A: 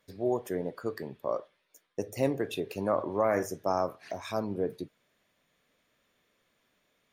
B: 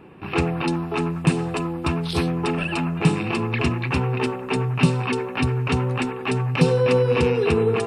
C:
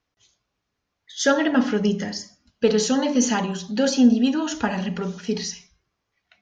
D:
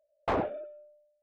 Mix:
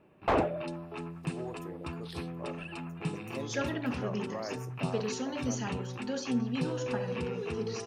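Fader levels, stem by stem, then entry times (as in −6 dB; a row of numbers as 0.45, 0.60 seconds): −12.5, −16.5, −15.0, +2.0 decibels; 1.15, 0.00, 2.30, 0.00 seconds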